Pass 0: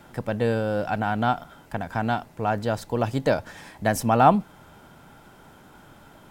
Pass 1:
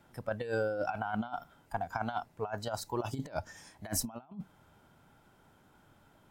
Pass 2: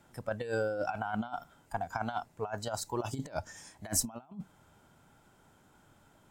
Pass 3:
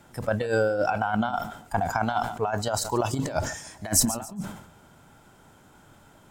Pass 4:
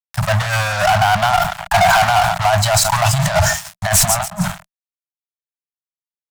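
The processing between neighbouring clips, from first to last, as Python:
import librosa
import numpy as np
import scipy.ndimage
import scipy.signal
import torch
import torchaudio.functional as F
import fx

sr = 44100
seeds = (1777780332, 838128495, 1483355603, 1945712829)

y1 = fx.noise_reduce_blind(x, sr, reduce_db=13)
y1 = fx.peak_eq(y1, sr, hz=97.0, db=4.0, octaves=0.67)
y1 = fx.over_compress(y1, sr, threshold_db=-29.0, ratio=-0.5)
y1 = y1 * librosa.db_to_amplitude(-6.0)
y2 = fx.peak_eq(y1, sr, hz=7500.0, db=7.0, octaves=0.65)
y3 = fx.echo_feedback(y2, sr, ms=142, feedback_pct=42, wet_db=-19.5)
y3 = fx.sustainer(y3, sr, db_per_s=82.0)
y3 = y3 * librosa.db_to_amplitude(8.5)
y4 = fx.spec_box(y3, sr, start_s=1.58, length_s=0.5, low_hz=230.0, high_hz=2600.0, gain_db=9)
y4 = fx.fuzz(y4, sr, gain_db=31.0, gate_db=-39.0)
y4 = scipy.signal.sosfilt(scipy.signal.cheby1(4, 1.0, [180.0, 640.0], 'bandstop', fs=sr, output='sos'), y4)
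y4 = y4 * librosa.db_to_amplitude(4.5)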